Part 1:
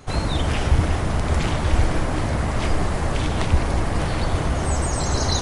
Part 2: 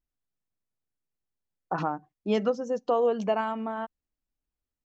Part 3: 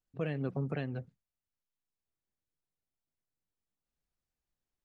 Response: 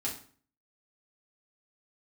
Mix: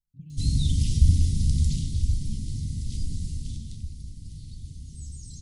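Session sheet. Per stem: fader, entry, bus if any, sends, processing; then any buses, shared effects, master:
0:01.54 −2 dB → 0:02.09 −9 dB → 0:03.30 −9 dB → 0:03.85 −19 dB, 0.30 s, send −9 dB, hollow resonant body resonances 420/2,000 Hz, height 12 dB, ringing for 35 ms
−8.5 dB, 0.00 s, no send, no processing
0.0 dB, 0.00 s, send −7.5 dB, downward compressor 3 to 1, threshold −39 dBFS, peak gain reduction 7.5 dB; high-shelf EQ 2,100 Hz −10 dB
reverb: on, RT60 0.45 s, pre-delay 4 ms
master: inverse Chebyshev band-stop filter 630–1,300 Hz, stop band 80 dB

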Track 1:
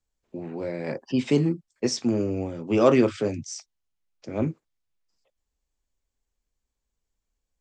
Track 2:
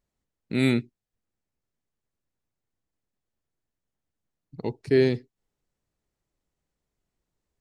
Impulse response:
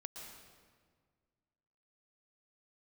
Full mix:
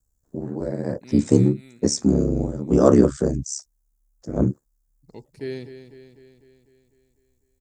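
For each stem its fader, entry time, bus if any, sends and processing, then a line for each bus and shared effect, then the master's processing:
+1.0 dB, 0.00 s, no send, no echo send, drawn EQ curve 1,700 Hz 0 dB, 2,400 Hz −19 dB, 7,000 Hz +7 dB; ring modulation 35 Hz; low-shelf EQ 390 Hz +11 dB
−11.5 dB, 0.50 s, no send, echo send −11 dB, automatic ducking −11 dB, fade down 1.30 s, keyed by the first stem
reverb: not used
echo: repeating echo 250 ms, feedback 58%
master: high-shelf EQ 6,900 Hz +9.5 dB

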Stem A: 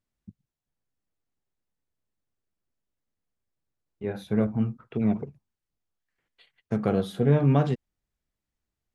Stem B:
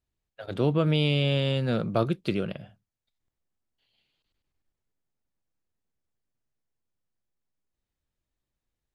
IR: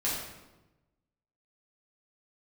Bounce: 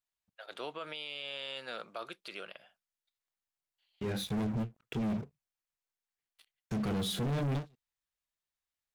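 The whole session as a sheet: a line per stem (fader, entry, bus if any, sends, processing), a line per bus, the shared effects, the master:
−10.0 dB, 0.00 s, no send, drawn EQ curve 130 Hz 0 dB, 1,000 Hz −7 dB, 3,300 Hz +7 dB; leveller curve on the samples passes 5; every ending faded ahead of time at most 350 dB per second
−3.0 dB, 0.00 s, no send, high-pass filter 910 Hz 12 dB per octave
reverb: not used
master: brickwall limiter −29.5 dBFS, peak gain reduction 9 dB

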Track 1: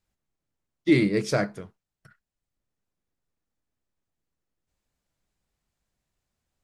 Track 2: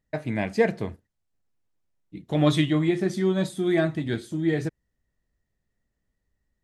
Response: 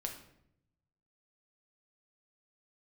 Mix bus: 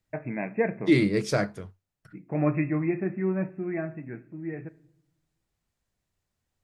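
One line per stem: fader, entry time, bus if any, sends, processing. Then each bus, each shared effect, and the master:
−1.0 dB, 0.00 s, no send, parametric band 95 Hz +7.5 dB 0.25 octaves
0:03.39 −6 dB → 0:03.99 −13 dB, 0.00 s, send −10 dB, brick-wall band-pass 110–2,700 Hz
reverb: on, RT60 0.75 s, pre-delay 6 ms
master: no processing

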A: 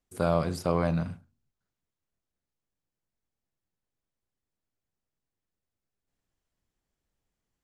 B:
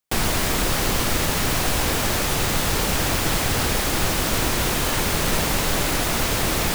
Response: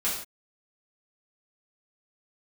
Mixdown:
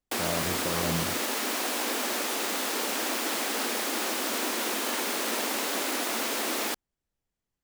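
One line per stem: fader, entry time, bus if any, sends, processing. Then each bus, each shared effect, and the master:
−3.5 dB, 0.00 s, no send, brickwall limiter −17 dBFS, peak gain reduction 6 dB
−6.0 dB, 0.00 s, no send, Butterworth high-pass 220 Hz 72 dB per octave; dead-zone distortion −49.5 dBFS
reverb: not used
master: no processing

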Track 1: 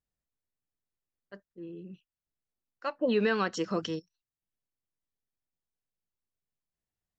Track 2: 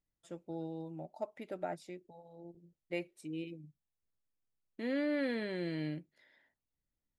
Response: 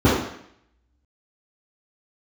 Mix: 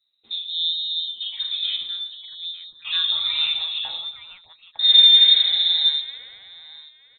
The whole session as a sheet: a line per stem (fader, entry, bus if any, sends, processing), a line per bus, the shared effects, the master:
−5.5 dB, 0.00 s, send −11 dB, echo send −5 dB, downward compressor 3 to 1, threshold −34 dBFS, peak gain reduction 9 dB; spectral tilt +3 dB per octave
+3.0 dB, 0.00 s, send −15.5 dB, echo send −8 dB, parametric band 550 Hz −6 dB 0.58 octaves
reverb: on, RT60 0.70 s, pre-delay 3 ms
echo: repeating echo 907 ms, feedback 22%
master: voice inversion scrambler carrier 3,900 Hz

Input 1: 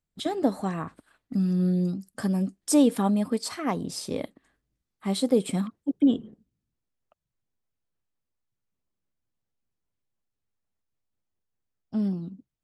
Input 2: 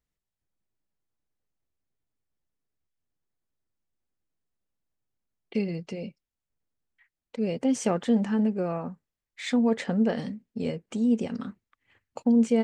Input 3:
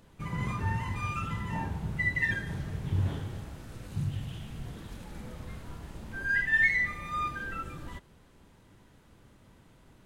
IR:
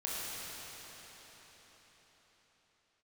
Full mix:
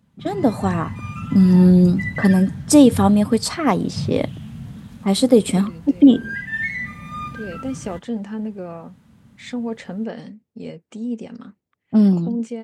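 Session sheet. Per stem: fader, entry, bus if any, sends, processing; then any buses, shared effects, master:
+3.0 dB, 0.00 s, no send, low-pass that shuts in the quiet parts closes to 560 Hz, open at −24.5 dBFS
−13.0 dB, 0.00 s, no send, no processing
−8.5 dB, 0.00 s, no send, low shelf with overshoot 280 Hz +6.5 dB, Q 3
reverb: not used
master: high-pass filter 89 Hz; automatic gain control gain up to 10 dB

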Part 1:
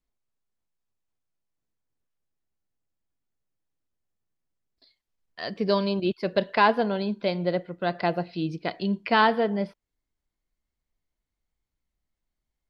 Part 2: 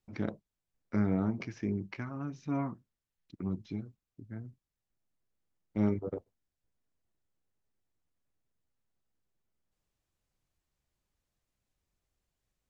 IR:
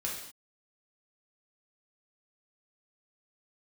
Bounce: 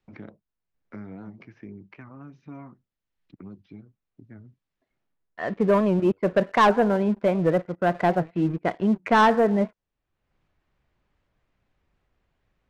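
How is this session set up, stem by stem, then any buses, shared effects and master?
−2.0 dB, 0.00 s, no send, low-pass filter 2,000 Hz 24 dB per octave; leveller curve on the samples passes 2
−7.5 dB, 0.00 s, no send, high-shelf EQ 2,700 Hz +8 dB; multiband upward and downward compressor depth 70%; automatic ducking −20 dB, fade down 0.40 s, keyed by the first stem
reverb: not used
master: low-pass that shuts in the quiet parts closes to 2,800 Hz, open at −18.5 dBFS; wow of a warped record 78 rpm, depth 160 cents

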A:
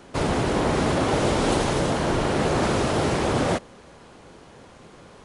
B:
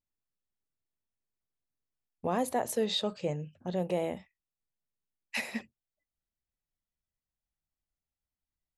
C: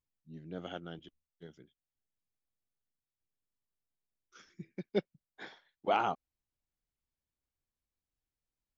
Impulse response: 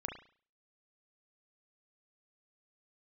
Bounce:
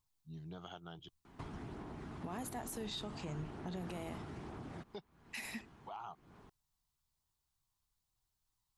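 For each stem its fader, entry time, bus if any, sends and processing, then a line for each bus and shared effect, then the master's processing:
−11.0 dB, 1.25 s, bus A, no send, high-shelf EQ 2,600 Hz −11.5 dB; downward compressor, threshold −24 dBFS, peak gain reduction 6.5 dB
−0.5 dB, 0.00 s, no bus, no send, high-shelf EQ 8,100 Hz +8 dB; downward compressor 2.5 to 1, threshold −37 dBFS, peak gain reduction 8.5 dB
+1.0 dB, 0.00 s, bus A, no send, octave-band graphic EQ 125/250/500/1,000/2,000/4,000/8,000 Hz +7/−11/+4/+11/−10/+7/+5 dB; automatic ducking −21 dB, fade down 0.25 s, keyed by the second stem
bus A: 0.0 dB, phase shifter 1.1 Hz, delay 1.1 ms, feedback 22%; downward compressor 6 to 1, threshold −43 dBFS, peak gain reduction 17.5 dB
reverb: not used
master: parametric band 530 Hz −13 dB 0.44 octaves; brickwall limiter −34 dBFS, peak gain reduction 8.5 dB

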